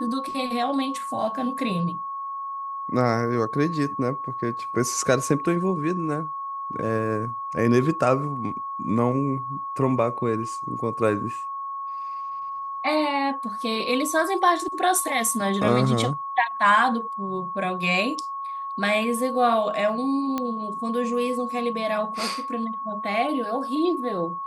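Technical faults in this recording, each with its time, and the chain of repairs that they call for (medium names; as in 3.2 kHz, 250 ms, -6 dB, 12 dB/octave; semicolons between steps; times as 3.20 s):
whine 1.1 kHz -29 dBFS
20.38 s: pop -13 dBFS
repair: de-click; band-stop 1.1 kHz, Q 30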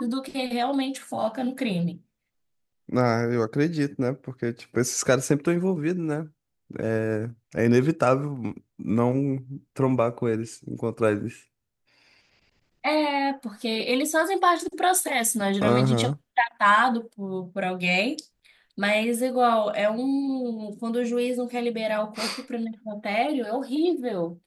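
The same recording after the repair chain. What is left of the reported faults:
nothing left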